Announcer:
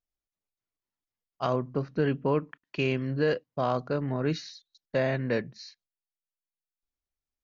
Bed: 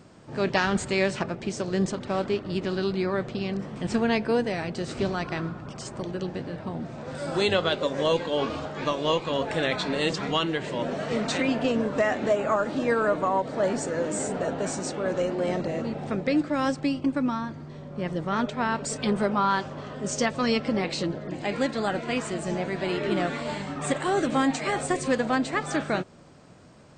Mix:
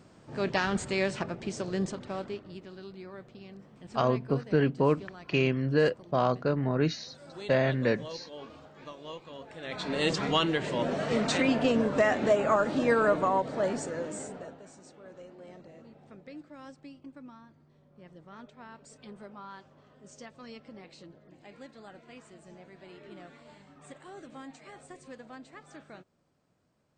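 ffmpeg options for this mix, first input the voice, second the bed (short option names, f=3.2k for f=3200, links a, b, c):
-filter_complex "[0:a]adelay=2550,volume=1.5dB[a];[1:a]volume=13dB,afade=t=out:st=1.67:d=0.98:silence=0.211349,afade=t=in:st=9.61:d=0.52:silence=0.133352,afade=t=out:st=13.09:d=1.53:silence=0.0841395[b];[a][b]amix=inputs=2:normalize=0"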